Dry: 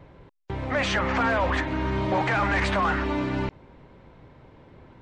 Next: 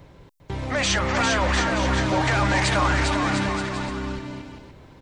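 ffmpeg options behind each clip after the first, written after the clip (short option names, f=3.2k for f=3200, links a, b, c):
-filter_complex "[0:a]bass=f=250:g=2,treble=f=4k:g=15,asplit=2[a][b];[b]aecho=0:1:400|700|925|1094|1220:0.631|0.398|0.251|0.158|0.1[c];[a][c]amix=inputs=2:normalize=0"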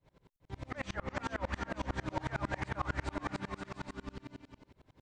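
-filter_complex "[0:a]acrossover=split=2100[a][b];[b]acompressor=threshold=-37dB:ratio=6[c];[a][c]amix=inputs=2:normalize=0,aeval=exprs='val(0)*pow(10,-31*if(lt(mod(-11*n/s,1),2*abs(-11)/1000),1-mod(-11*n/s,1)/(2*abs(-11)/1000),(mod(-11*n/s,1)-2*abs(-11)/1000)/(1-2*abs(-11)/1000))/20)':c=same,volume=-7.5dB"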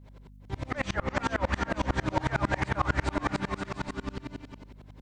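-af "aeval=exprs='val(0)+0.00126*(sin(2*PI*50*n/s)+sin(2*PI*2*50*n/s)/2+sin(2*PI*3*50*n/s)/3+sin(2*PI*4*50*n/s)/4+sin(2*PI*5*50*n/s)/5)':c=same,volume=8.5dB"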